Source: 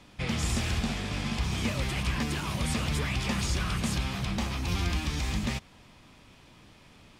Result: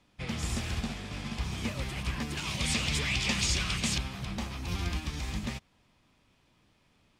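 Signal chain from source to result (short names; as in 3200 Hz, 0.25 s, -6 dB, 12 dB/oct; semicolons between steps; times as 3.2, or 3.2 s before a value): 2.37–3.98 band shelf 4100 Hz +8.5 dB 2.3 oct; upward expander 1.5:1, over -45 dBFS; gain -2 dB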